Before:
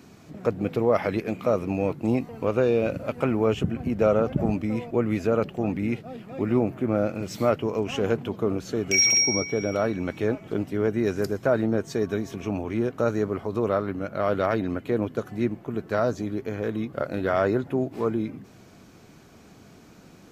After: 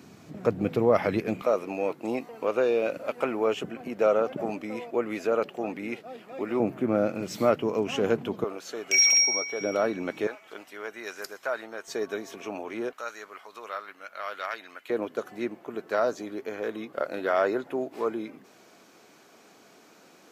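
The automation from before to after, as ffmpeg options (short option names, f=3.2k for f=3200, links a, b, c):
-af "asetnsamples=n=441:p=0,asendcmd='1.42 highpass f 400;6.6 highpass f 170;8.44 highpass f 630;9.61 highpass f 280;10.27 highpass f 1000;11.88 highpass f 470;12.93 highpass f 1400;14.9 highpass f 400',highpass=97"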